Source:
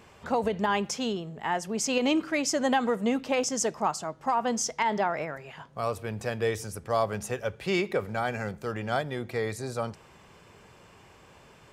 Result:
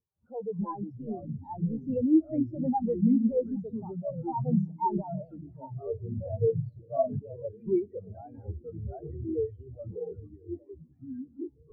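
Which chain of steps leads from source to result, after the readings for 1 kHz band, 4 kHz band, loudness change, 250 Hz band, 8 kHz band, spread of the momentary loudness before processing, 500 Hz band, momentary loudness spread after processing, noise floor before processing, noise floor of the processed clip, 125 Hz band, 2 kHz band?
−7.0 dB, below −40 dB, −2.0 dB, +2.5 dB, below −40 dB, 8 LU, −3.0 dB, 17 LU, −55 dBFS, −59 dBFS, +3.5 dB, below −40 dB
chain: on a send: echo through a band-pass that steps 407 ms, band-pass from 250 Hz, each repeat 1.4 octaves, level −11.5 dB
on the sum: power curve on the samples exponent 0.35
low-pass filter 3,700 Hz 6 dB per octave
delay with pitch and tempo change per echo 164 ms, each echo −6 semitones, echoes 3
every bin expanded away from the loudest bin 4 to 1
level −5.5 dB

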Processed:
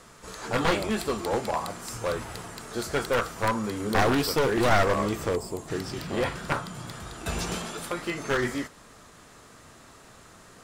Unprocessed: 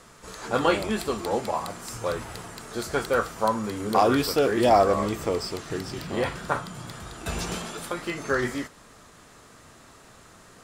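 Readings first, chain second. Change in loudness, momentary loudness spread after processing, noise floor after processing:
−1.5 dB, 13 LU, −52 dBFS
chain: wavefolder on the positive side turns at −20.5 dBFS
gain on a spectral selection 0:05.36–0:05.68, 1,100–6,500 Hz −12 dB

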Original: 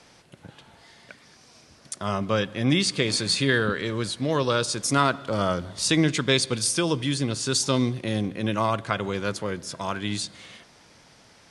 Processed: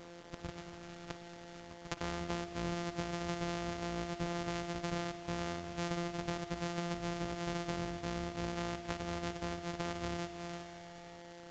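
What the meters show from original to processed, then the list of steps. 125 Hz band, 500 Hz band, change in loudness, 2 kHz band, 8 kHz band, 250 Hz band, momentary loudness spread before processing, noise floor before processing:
−13.0 dB, −13.0 dB, −15.0 dB, −14.5 dB, −21.0 dB, −13.0 dB, 8 LU, −55 dBFS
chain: samples sorted by size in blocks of 256 samples
downward compressor 10 to 1, threshold −37 dBFS, peak gain reduction 21.5 dB
spring reverb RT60 2.9 s, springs 55 ms, chirp 55 ms, DRR 11.5 dB
bit reduction 9 bits
downsampling to 16,000 Hz
level +1.5 dB

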